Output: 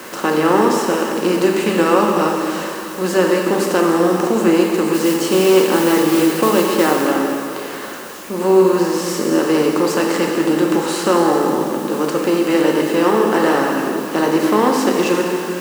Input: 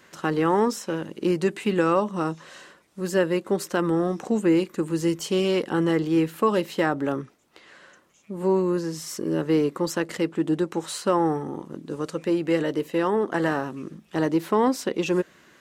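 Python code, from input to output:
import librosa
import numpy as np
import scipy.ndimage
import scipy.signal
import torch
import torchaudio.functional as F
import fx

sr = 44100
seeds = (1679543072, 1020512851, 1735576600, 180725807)

p1 = fx.bin_compress(x, sr, power=0.6)
p2 = fx.mod_noise(p1, sr, seeds[0], snr_db=15, at=(4.93, 7.0), fade=0.02)
p3 = scipy.signal.sosfilt(scipy.signal.butter(2, 200.0, 'highpass', fs=sr, output='sos'), p2)
p4 = fx.notch(p3, sr, hz=1900.0, q=28.0)
p5 = fx.quant_dither(p4, sr, seeds[1], bits=6, dither='triangular')
p6 = p4 + F.gain(torch.from_numpy(p5), -4.0).numpy()
p7 = fx.rev_plate(p6, sr, seeds[2], rt60_s=2.6, hf_ratio=0.95, predelay_ms=0, drr_db=0.0)
y = F.gain(torch.from_numpy(p7), -1.5).numpy()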